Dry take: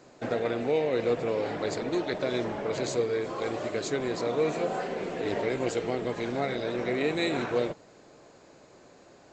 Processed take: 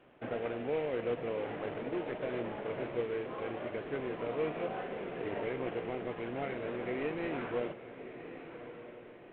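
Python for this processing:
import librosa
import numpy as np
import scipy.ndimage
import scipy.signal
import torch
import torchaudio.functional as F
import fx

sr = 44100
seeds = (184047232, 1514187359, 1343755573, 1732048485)

y = fx.cvsd(x, sr, bps=16000)
y = fx.echo_diffused(y, sr, ms=1180, feedback_pct=40, wet_db=-11.0)
y = y * 10.0 ** (-7.0 / 20.0)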